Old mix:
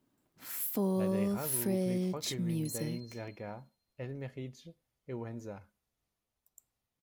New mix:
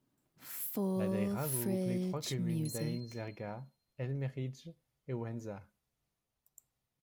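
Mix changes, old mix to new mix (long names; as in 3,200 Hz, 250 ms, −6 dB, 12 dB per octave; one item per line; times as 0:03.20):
first sound −4.0 dB
master: add parametric band 140 Hz +7 dB 0.38 octaves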